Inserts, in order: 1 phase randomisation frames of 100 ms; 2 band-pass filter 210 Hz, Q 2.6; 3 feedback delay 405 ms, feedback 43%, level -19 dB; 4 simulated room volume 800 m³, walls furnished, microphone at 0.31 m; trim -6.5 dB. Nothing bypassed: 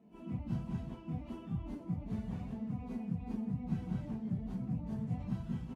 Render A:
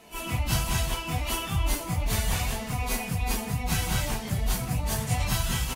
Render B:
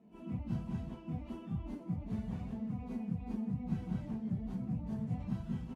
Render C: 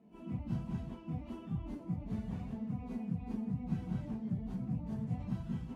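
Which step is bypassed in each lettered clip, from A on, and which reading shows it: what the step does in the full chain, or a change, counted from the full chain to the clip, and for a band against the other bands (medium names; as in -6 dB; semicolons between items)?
2, 2 kHz band +15.5 dB; 4, echo-to-direct -14.5 dB to -18.0 dB; 3, echo-to-direct -14.5 dB to -17.0 dB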